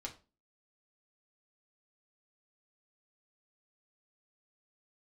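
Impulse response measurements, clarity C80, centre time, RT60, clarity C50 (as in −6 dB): 19.5 dB, 12 ms, 0.35 s, 14.0 dB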